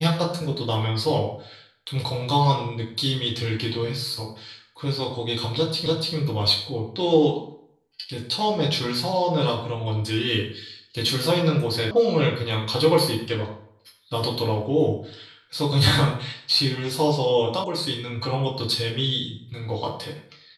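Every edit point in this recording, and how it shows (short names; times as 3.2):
5.86 repeat of the last 0.29 s
11.91 sound cut off
17.64 sound cut off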